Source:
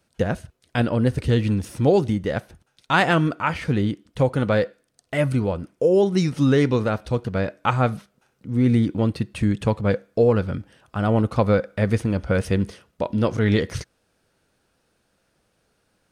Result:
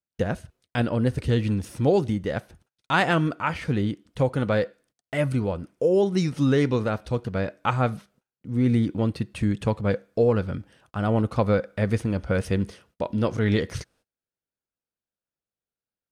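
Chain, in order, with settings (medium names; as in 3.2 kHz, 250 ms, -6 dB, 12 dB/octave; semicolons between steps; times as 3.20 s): gate -55 dBFS, range -27 dB; trim -3 dB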